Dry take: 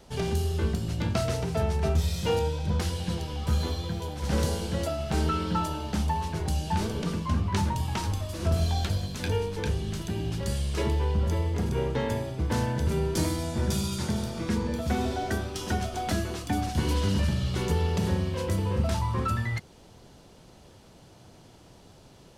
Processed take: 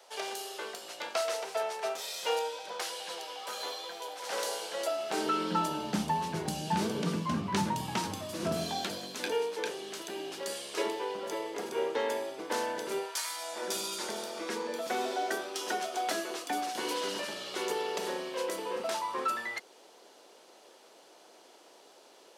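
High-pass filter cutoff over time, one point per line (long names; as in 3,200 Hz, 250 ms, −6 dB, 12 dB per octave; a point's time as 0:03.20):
high-pass filter 24 dB per octave
0:04.70 520 Hz
0:05.83 160 Hz
0:08.40 160 Hz
0:09.48 360 Hz
0:12.96 360 Hz
0:13.23 1,100 Hz
0:13.70 370 Hz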